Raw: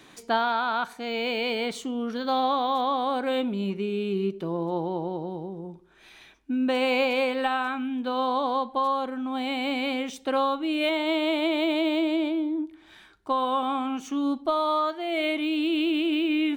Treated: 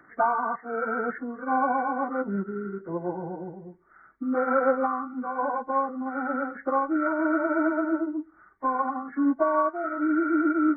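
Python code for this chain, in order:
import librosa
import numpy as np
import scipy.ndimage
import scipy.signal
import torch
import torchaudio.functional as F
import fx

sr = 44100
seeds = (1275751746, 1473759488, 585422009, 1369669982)

y = fx.freq_compress(x, sr, knee_hz=1100.0, ratio=4.0)
y = fx.stretch_vocoder_free(y, sr, factor=0.65)
y = fx.upward_expand(y, sr, threshold_db=-40.0, expansion=1.5)
y = y * 10.0 ** (5.0 / 20.0)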